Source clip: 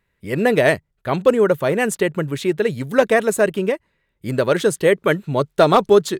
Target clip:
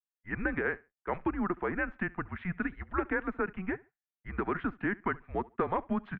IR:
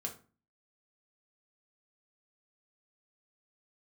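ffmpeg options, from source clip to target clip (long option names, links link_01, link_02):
-af "highpass=frequency=140:width=0.5412,highpass=frequency=140:width=1.3066,agate=range=-33dB:threshold=-31dB:ratio=3:detection=peak,equalizer=frequency=360:width_type=o:width=2.6:gain=-13,acompressor=threshold=-25dB:ratio=5,aecho=1:1:70|140:0.0708|0.0163,highpass=frequency=230:width_type=q:width=0.5412,highpass=frequency=230:width_type=q:width=1.307,lowpass=frequency=2200:width_type=q:width=0.5176,lowpass=frequency=2200:width_type=q:width=0.7071,lowpass=frequency=2200:width_type=q:width=1.932,afreqshift=-190,volume=-1.5dB"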